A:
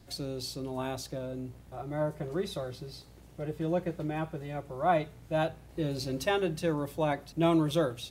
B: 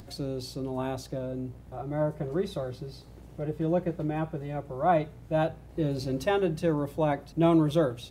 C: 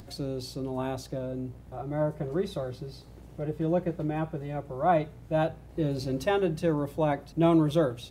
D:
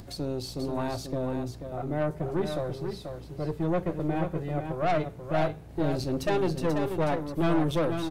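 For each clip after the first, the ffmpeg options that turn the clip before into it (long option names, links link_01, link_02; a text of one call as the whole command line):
ffmpeg -i in.wav -af "tiltshelf=frequency=1500:gain=4,acompressor=mode=upward:threshold=-42dB:ratio=2.5" out.wav
ffmpeg -i in.wav -af anull out.wav
ffmpeg -i in.wav -filter_complex "[0:a]aeval=exprs='(tanh(20*val(0)+0.5)-tanh(0.5))/20':channel_layout=same,asplit=2[link_01][link_02];[link_02]aecho=0:1:487:0.447[link_03];[link_01][link_03]amix=inputs=2:normalize=0,volume=4dB" out.wav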